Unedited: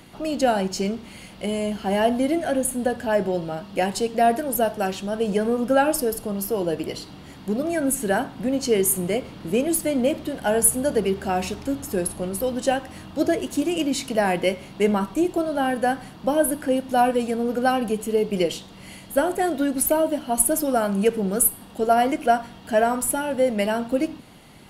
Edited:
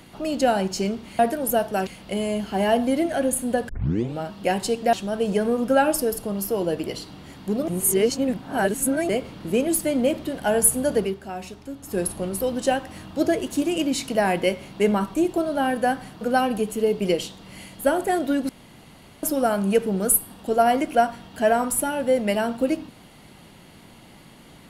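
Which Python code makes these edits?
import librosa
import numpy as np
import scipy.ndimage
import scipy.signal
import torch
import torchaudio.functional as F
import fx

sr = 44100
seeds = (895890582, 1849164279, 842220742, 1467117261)

y = fx.edit(x, sr, fx.tape_start(start_s=3.01, length_s=0.49),
    fx.move(start_s=4.25, length_s=0.68, to_s=1.19),
    fx.reverse_span(start_s=7.68, length_s=1.41),
    fx.fade_down_up(start_s=10.99, length_s=1.01, db=-9.5, fade_s=0.19),
    fx.cut(start_s=16.21, length_s=1.31),
    fx.room_tone_fill(start_s=19.8, length_s=0.74), tone=tone)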